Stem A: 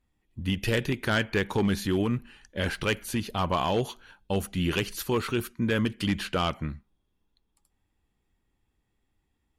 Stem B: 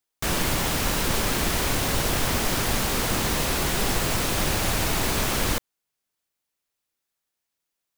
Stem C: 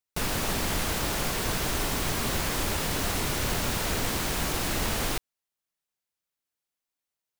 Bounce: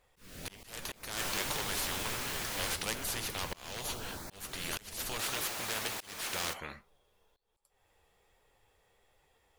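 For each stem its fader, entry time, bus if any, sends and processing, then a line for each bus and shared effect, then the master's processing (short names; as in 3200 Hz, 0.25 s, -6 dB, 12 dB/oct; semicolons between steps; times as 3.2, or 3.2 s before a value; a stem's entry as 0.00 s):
+0.5 dB, 0.00 s, no send, resonant low shelf 370 Hz -10 dB, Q 3; spectral compressor 4:1
+1.5 dB, 0.95 s, muted 2.74–5.19, no send, HPF 770 Hz 6 dB/oct; auto duck -9 dB, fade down 1.60 s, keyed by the first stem
-10.0 dB, 0.00 s, no send, LFO notch saw up 0.92 Hz 500–3500 Hz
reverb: off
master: flange 1.3 Hz, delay 6.5 ms, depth 5.7 ms, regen +65%; auto swell 0.336 s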